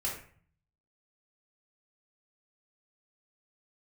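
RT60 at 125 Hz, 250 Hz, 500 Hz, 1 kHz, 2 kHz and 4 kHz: 0.90, 0.70, 0.50, 0.50, 0.50, 0.35 seconds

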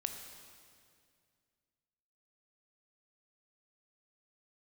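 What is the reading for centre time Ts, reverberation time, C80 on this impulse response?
43 ms, 2.2 s, 7.0 dB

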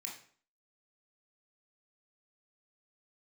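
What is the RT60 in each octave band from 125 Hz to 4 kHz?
0.50, 0.55, 0.50, 0.50, 0.45, 0.40 seconds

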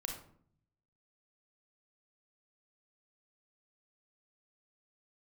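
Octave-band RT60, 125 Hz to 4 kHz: 1.1, 0.85, 0.60, 0.55, 0.45, 0.35 seconds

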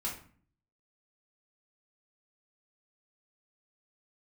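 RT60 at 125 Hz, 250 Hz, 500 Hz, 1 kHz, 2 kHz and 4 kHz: 0.80, 0.75, 0.45, 0.45, 0.45, 0.35 seconds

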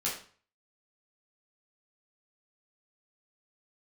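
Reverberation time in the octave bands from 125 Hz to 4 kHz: 0.60, 0.45, 0.45, 0.45, 0.40, 0.40 seconds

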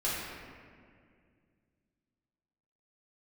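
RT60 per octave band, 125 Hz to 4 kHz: 3.0, 2.9, 2.4, 1.9, 1.9, 1.2 seconds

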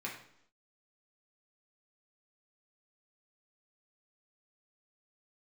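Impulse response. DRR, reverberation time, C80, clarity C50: −3.5 dB, 0.70 s, 9.5 dB, 6.0 dB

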